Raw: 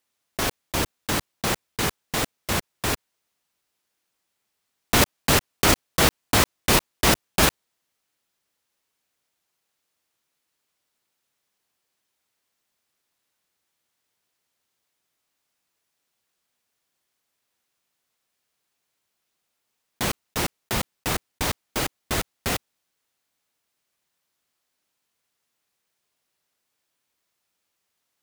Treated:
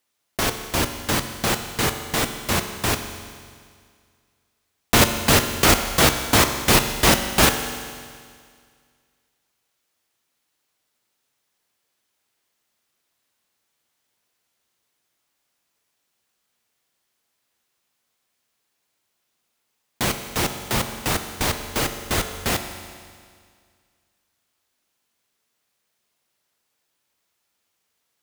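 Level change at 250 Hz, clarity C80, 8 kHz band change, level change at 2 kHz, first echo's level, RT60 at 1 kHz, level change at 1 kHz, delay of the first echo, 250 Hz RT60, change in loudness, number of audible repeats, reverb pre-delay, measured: +3.5 dB, 9.5 dB, +3.5 dB, +3.5 dB, no echo audible, 2.0 s, +3.5 dB, no echo audible, 2.0 s, +3.0 dB, no echo audible, 9 ms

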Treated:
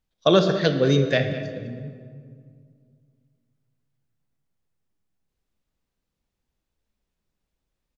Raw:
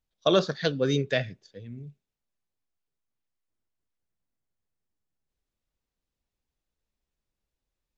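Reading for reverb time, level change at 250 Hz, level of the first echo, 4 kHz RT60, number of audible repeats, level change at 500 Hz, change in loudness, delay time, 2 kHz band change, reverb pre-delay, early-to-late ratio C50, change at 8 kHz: 2.1 s, +7.0 dB, −15.0 dB, 1.2 s, 1, +5.5 dB, +5.0 dB, 205 ms, +5.0 dB, 27 ms, 7.5 dB, can't be measured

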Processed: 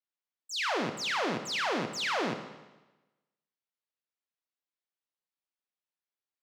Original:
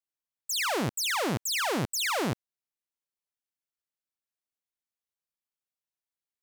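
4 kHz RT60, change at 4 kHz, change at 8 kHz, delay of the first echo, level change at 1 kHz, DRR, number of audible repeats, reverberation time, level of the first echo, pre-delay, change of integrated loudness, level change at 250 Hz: 1.0 s, −2.5 dB, −10.0 dB, no echo audible, −1.0 dB, 6.0 dB, no echo audible, 1.1 s, no echo audible, 14 ms, −3.0 dB, −3.0 dB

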